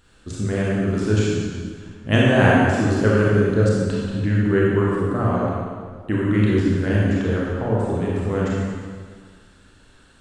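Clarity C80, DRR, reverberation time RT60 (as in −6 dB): −0.5 dB, −6.0 dB, 1.8 s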